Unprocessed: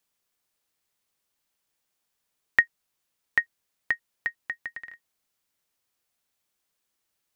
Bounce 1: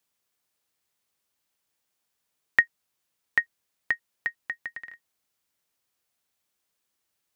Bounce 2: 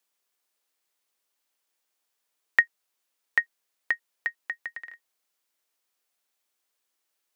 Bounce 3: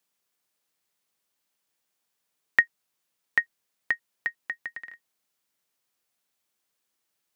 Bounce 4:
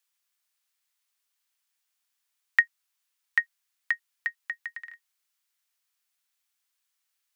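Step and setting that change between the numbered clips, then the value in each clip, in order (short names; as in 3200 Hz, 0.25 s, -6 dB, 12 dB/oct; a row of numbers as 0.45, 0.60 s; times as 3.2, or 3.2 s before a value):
HPF, cutoff: 43, 320, 120, 1200 Hz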